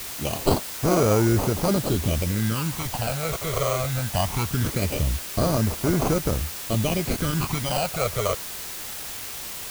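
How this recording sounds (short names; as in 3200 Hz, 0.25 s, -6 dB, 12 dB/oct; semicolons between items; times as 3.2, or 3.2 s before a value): aliases and images of a low sample rate 1800 Hz, jitter 0%; phasing stages 12, 0.21 Hz, lowest notch 270–3500 Hz; a quantiser's noise floor 6-bit, dither triangular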